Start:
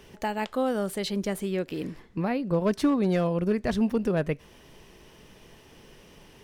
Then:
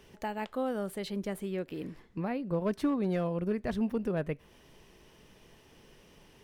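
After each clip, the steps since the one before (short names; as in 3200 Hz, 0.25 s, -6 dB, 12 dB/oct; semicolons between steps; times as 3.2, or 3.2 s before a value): dynamic EQ 6000 Hz, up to -6 dB, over -55 dBFS, Q 0.8; gain -6 dB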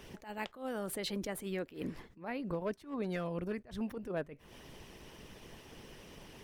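harmonic-percussive split harmonic -9 dB; compressor 4:1, threshold -43 dBFS, peak gain reduction 11.5 dB; attack slew limiter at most 170 dB/s; gain +9 dB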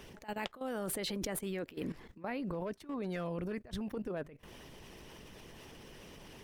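level quantiser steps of 15 dB; gain +7.5 dB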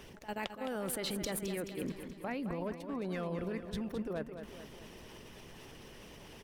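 feedback echo 0.214 s, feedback 54%, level -9 dB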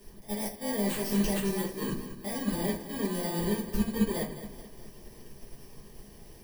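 FFT order left unsorted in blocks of 32 samples; shoebox room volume 39 m³, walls mixed, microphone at 1.4 m; upward expander 1.5:1, over -39 dBFS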